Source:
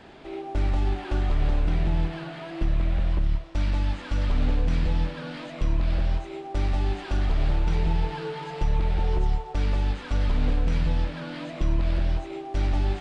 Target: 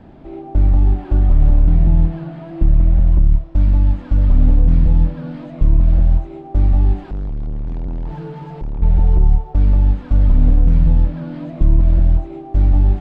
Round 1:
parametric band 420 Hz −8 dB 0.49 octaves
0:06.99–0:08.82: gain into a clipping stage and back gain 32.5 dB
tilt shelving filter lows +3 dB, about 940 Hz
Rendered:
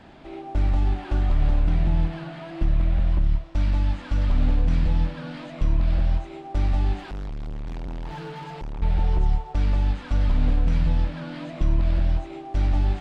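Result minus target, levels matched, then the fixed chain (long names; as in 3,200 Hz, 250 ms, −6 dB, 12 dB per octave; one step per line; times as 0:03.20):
1,000 Hz band +8.0 dB
parametric band 420 Hz −8 dB 0.49 octaves
0:06.99–0:08.82: gain into a clipping stage and back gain 32.5 dB
tilt shelving filter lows +12 dB, about 940 Hz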